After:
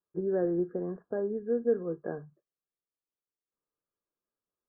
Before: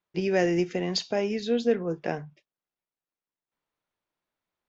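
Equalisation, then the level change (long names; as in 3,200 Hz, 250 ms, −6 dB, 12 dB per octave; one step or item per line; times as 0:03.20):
Chebyshev low-pass with heavy ripple 1,700 Hz, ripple 9 dB
high-frequency loss of the air 360 metres
low-shelf EQ 330 Hz +4 dB
−2.5 dB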